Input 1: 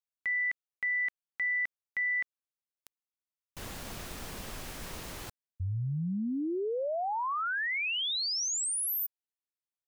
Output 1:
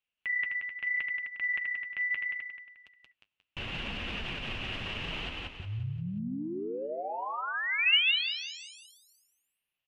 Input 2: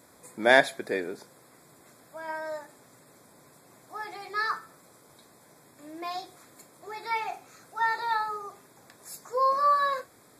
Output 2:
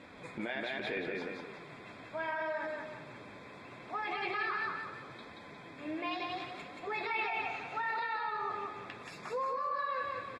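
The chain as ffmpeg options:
ffmpeg -i in.wav -af "equalizer=frequency=67:width=0.32:gain=5,acompressor=threshold=-40dB:ratio=4:attack=11:release=64:knee=1:detection=rms,aecho=1:1:178|356|534|712|890:0.708|0.29|0.119|0.0488|0.02,alimiter=level_in=8.5dB:limit=-24dB:level=0:latency=1:release=40,volume=-8.5dB,lowpass=frequency=2800:width_type=q:width=6.5,flanger=delay=3.7:depth=6.8:regen=-44:speed=0.74:shape=sinusoidal,volume=7dB" out.wav

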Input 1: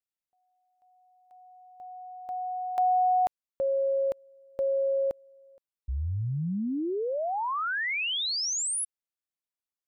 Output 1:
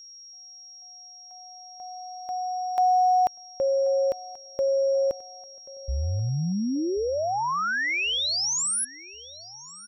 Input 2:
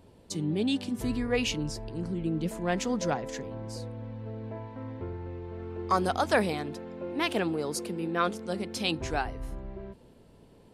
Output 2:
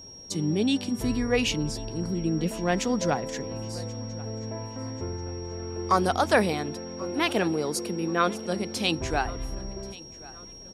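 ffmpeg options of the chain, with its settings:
ffmpeg -i in.wav -af "aeval=exprs='val(0)+0.00447*sin(2*PI*5600*n/s)':channel_layout=same,aecho=1:1:1084|2168|3252:0.0891|0.0374|0.0157,volume=3.5dB" out.wav

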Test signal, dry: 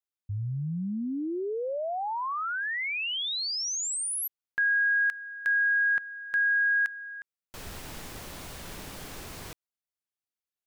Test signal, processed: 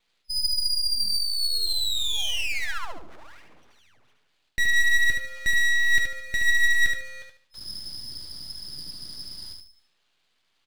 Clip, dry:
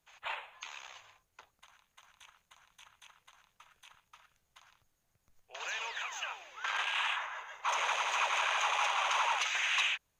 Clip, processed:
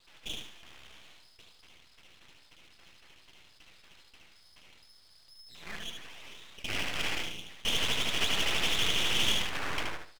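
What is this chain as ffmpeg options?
ffmpeg -i in.wav -filter_complex "[0:a]afwtdn=0.0178,lowpass=frequency=2200:width_type=q:width=0.5098,lowpass=frequency=2200:width_type=q:width=0.6013,lowpass=frequency=2200:width_type=q:width=0.9,lowpass=frequency=2200:width_type=q:width=2.563,afreqshift=-2600,areverse,acompressor=mode=upward:threshold=-42dB:ratio=2.5:attack=0.26:release=34:knee=2.83:detection=peak,areverse,flanger=delay=5.8:depth=6.4:regen=55:speed=0.35:shape=sinusoidal,aeval=exprs='abs(val(0))':channel_layout=same,highshelf=frequency=2000:gain=12,asplit=2[link_01][link_02];[link_02]aecho=0:1:74|148|222|296:0.562|0.163|0.0473|0.0137[link_03];[link_01][link_03]amix=inputs=2:normalize=0,volume=4.5dB" out.wav

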